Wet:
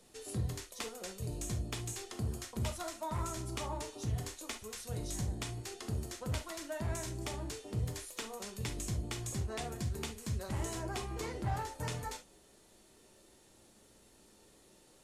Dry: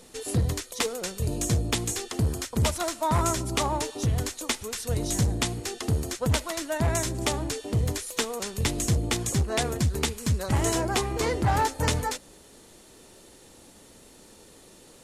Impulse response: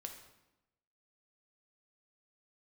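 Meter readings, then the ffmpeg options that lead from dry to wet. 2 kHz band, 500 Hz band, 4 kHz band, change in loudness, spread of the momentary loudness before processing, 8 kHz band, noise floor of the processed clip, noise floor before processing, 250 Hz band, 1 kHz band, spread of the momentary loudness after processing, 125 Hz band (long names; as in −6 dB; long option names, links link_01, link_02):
−13.0 dB, −13.0 dB, −13.5 dB, −12.5 dB, 5 LU, −13.0 dB, −63 dBFS, −52 dBFS, −12.5 dB, −13.5 dB, 4 LU, −11.0 dB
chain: -filter_complex "[0:a]acrossover=split=120[link_01][link_02];[link_02]acompressor=threshold=-25dB:ratio=6[link_03];[link_01][link_03]amix=inputs=2:normalize=0[link_04];[1:a]atrim=start_sample=2205,atrim=end_sample=4410,asetrate=57330,aresample=44100[link_05];[link_04][link_05]afir=irnorm=-1:irlink=0,volume=-4.5dB"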